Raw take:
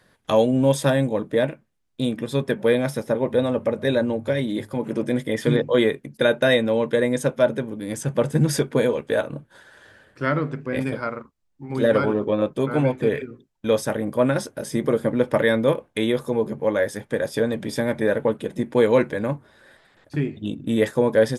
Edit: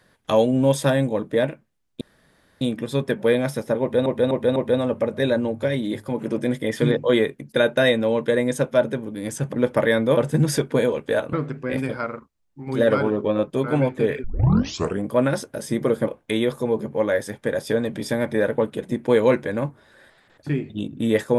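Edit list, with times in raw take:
2.01 s: insert room tone 0.60 s
3.21–3.46 s: loop, 4 plays
9.34–10.36 s: delete
13.27 s: tape start 0.81 s
15.10–15.74 s: move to 8.18 s

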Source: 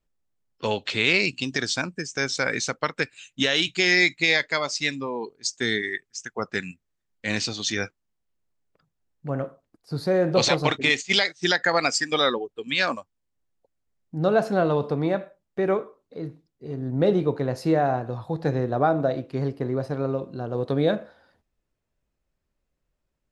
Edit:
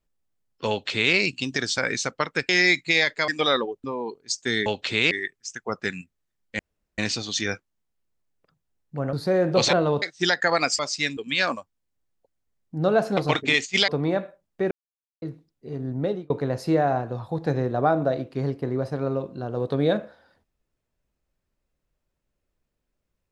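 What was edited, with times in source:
0.69–1.14 s: copy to 5.81 s
1.78–2.41 s: delete
3.12–3.82 s: delete
4.61–4.99 s: swap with 12.01–12.57 s
7.29 s: insert room tone 0.39 s
9.44–9.93 s: delete
10.53–11.24 s: swap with 14.57–14.86 s
15.69–16.20 s: mute
16.85–17.28 s: fade out

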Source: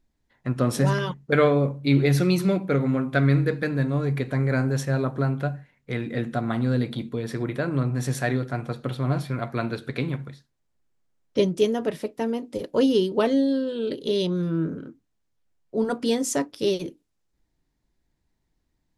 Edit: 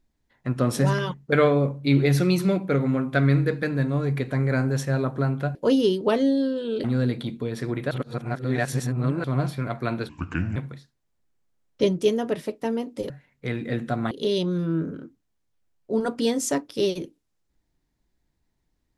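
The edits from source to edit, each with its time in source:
5.55–6.56 s: swap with 12.66–13.95 s
7.63–8.96 s: reverse
9.81–10.12 s: speed 66%

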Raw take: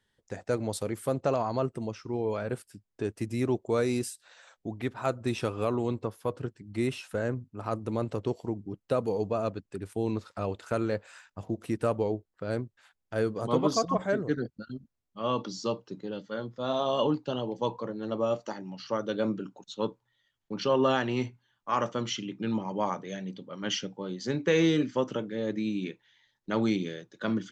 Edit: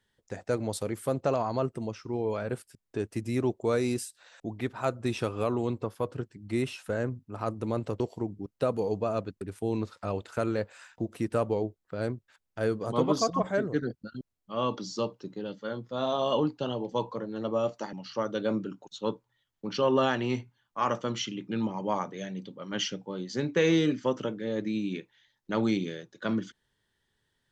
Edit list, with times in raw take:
shrink pauses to 75%

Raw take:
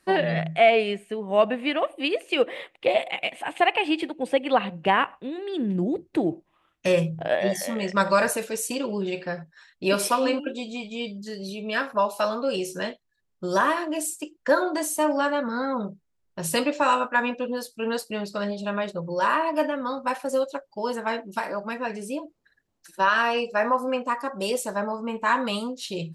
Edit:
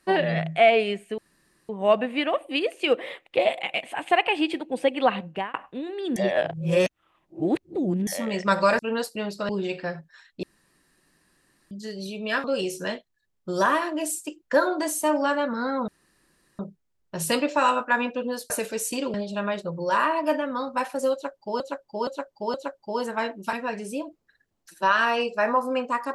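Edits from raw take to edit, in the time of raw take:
1.18 s: insert room tone 0.51 s
4.68–5.03 s: fade out
5.65–7.56 s: reverse
8.28–8.92 s: swap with 17.74–18.44 s
9.86–11.14 s: room tone
11.87–12.39 s: delete
15.83 s: insert room tone 0.71 s
20.43–20.90 s: loop, 4 plays
21.42–21.70 s: delete

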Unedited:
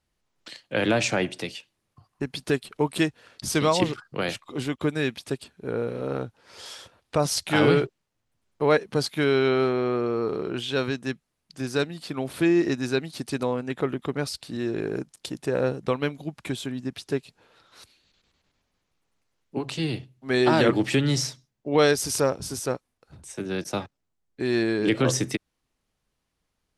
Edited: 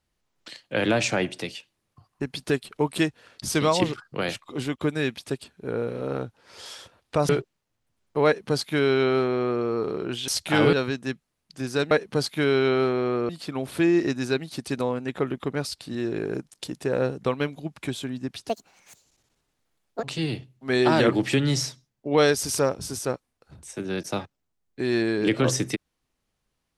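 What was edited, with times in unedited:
7.29–7.74 s: move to 10.73 s
8.71–10.09 s: copy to 11.91 s
17.11–19.64 s: speed 164%

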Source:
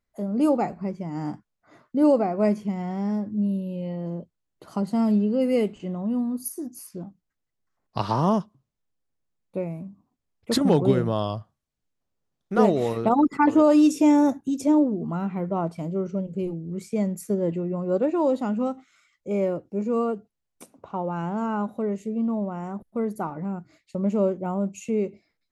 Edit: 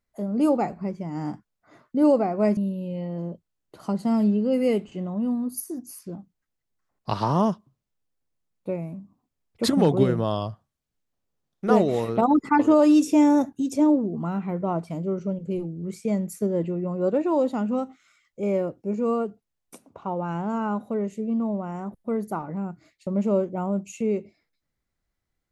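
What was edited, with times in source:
2.57–3.45 s: delete

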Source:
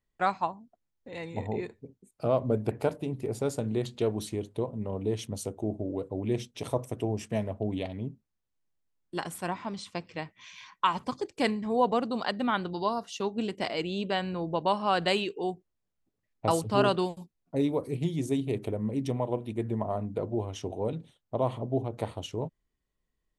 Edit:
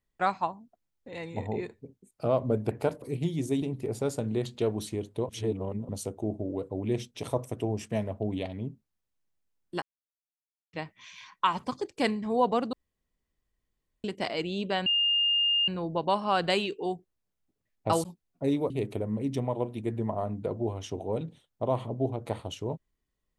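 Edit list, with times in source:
4.69–5.29 s: reverse
9.22–10.13 s: mute
12.13–13.44 s: room tone
14.26 s: add tone 2.82 kHz -22 dBFS 0.82 s
16.62–17.16 s: delete
17.82–18.42 s: move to 3.02 s

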